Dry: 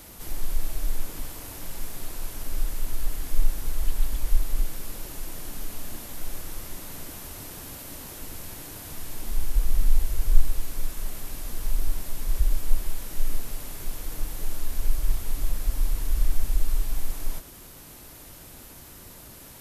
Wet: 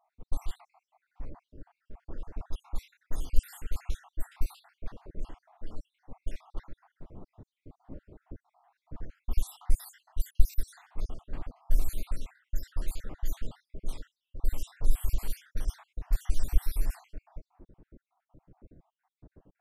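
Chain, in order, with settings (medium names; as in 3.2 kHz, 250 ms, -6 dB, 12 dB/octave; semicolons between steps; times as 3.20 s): random holes in the spectrogram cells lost 66%; harmonic tremolo 2.9 Hz, depth 50%, crossover 2.2 kHz; level-controlled noise filter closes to 350 Hz, open at -22 dBFS; vibrato with a chosen wave saw up 3.3 Hz, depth 100 cents; trim +1.5 dB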